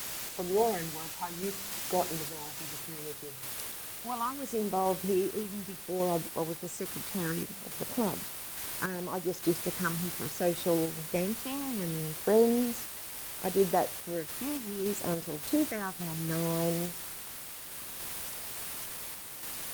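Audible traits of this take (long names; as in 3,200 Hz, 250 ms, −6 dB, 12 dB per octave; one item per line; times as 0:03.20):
phaser sweep stages 6, 0.67 Hz, lowest notch 480–2,700 Hz
a quantiser's noise floor 6 bits, dither triangular
sample-and-hold tremolo
Opus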